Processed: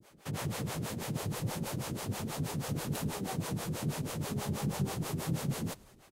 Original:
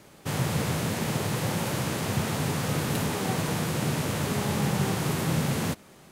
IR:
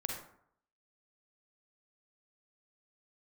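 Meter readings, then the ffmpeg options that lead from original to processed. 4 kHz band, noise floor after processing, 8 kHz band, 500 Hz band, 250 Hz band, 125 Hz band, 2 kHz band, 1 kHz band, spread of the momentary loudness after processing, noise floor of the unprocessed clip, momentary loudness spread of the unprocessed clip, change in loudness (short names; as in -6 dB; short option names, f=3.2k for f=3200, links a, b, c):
-9.5 dB, -59 dBFS, -7.5 dB, -9.0 dB, -8.0 dB, -7.5 dB, -11.5 dB, -9.5 dB, 3 LU, -52 dBFS, 2 LU, -8.0 dB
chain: -filter_complex "[0:a]adynamicequalizer=threshold=0.00355:dfrequency=1900:dqfactor=0.74:tfrequency=1900:tqfactor=0.74:attack=5:release=100:ratio=0.375:range=2.5:mode=cutabove:tftype=bell,acrossover=split=410[a][b];[a]aeval=exprs='val(0)*(1-1/2+1/2*cos(2*PI*6.2*n/s))':c=same[c];[b]aeval=exprs='val(0)*(1-1/2-1/2*cos(2*PI*6.2*n/s))':c=same[d];[c][d]amix=inputs=2:normalize=0,asplit=5[e][f][g][h][i];[f]adelay=106,afreqshift=-66,volume=-23.5dB[j];[g]adelay=212,afreqshift=-132,volume=-27.8dB[k];[h]adelay=318,afreqshift=-198,volume=-32.1dB[l];[i]adelay=424,afreqshift=-264,volume=-36.4dB[m];[e][j][k][l][m]amix=inputs=5:normalize=0,volume=-3dB"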